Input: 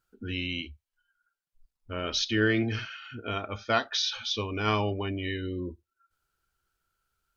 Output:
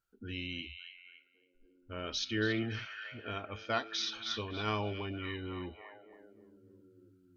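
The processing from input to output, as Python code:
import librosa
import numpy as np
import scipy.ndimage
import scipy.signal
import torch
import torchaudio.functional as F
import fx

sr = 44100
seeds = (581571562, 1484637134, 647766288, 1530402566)

y = fx.echo_stepped(x, sr, ms=280, hz=2900.0, octaves=-0.7, feedback_pct=70, wet_db=-6.5)
y = F.gain(torch.from_numpy(y), -7.5).numpy()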